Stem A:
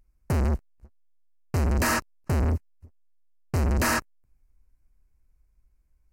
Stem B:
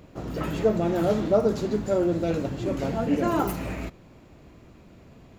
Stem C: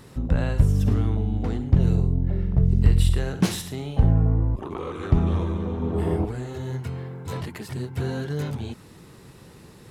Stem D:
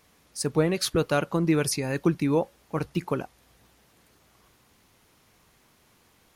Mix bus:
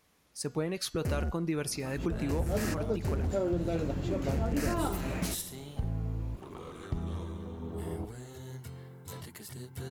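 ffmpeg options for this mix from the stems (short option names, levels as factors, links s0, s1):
-filter_complex "[0:a]equalizer=f=1000:w=1.8:g=-11.5,adelay=750,volume=0.473[s0];[1:a]adelay=1450,volume=0.75[s1];[2:a]aemphasis=mode=production:type=75kf,bandreject=f=2500:w=11,adelay=1800,volume=0.211[s2];[3:a]bandreject=f=240.3:t=h:w=4,bandreject=f=480.6:t=h:w=4,bandreject=f=720.9:t=h:w=4,bandreject=f=961.2:t=h:w=4,bandreject=f=1201.5:t=h:w=4,bandreject=f=1441.8:t=h:w=4,bandreject=f=1682.1:t=h:w=4,bandreject=f=1922.4:t=h:w=4,bandreject=f=2162.7:t=h:w=4,bandreject=f=2403:t=h:w=4,bandreject=f=2643.3:t=h:w=4,bandreject=f=2883.6:t=h:w=4,bandreject=f=3123.9:t=h:w=4,bandreject=f=3364.2:t=h:w=4,bandreject=f=3604.5:t=h:w=4,bandreject=f=3844.8:t=h:w=4,bandreject=f=4085.1:t=h:w=4,bandreject=f=4325.4:t=h:w=4,bandreject=f=4565.7:t=h:w=4,bandreject=f=4806:t=h:w=4,bandreject=f=5046.3:t=h:w=4,bandreject=f=5286.6:t=h:w=4,bandreject=f=5526.9:t=h:w=4,bandreject=f=5767.2:t=h:w=4,bandreject=f=6007.5:t=h:w=4,bandreject=f=6247.8:t=h:w=4,bandreject=f=6488.1:t=h:w=4,bandreject=f=6728.4:t=h:w=4,bandreject=f=6968.7:t=h:w=4,bandreject=f=7209:t=h:w=4,bandreject=f=7449.3:t=h:w=4,bandreject=f=7689.6:t=h:w=4,bandreject=f=7929.9:t=h:w=4,volume=0.447,asplit=2[s3][s4];[s4]apad=whole_len=301288[s5];[s1][s5]sidechaincompress=threshold=0.00355:ratio=8:attack=29:release=103[s6];[s0][s6][s2][s3]amix=inputs=4:normalize=0,acompressor=threshold=0.0398:ratio=3"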